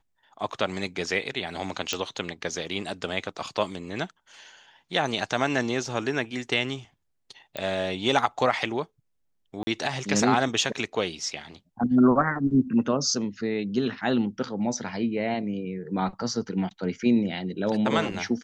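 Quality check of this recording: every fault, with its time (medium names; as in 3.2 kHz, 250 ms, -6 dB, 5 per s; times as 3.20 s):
1.93 s: pop
7.57 s: pop -16 dBFS
9.63–9.67 s: dropout 40 ms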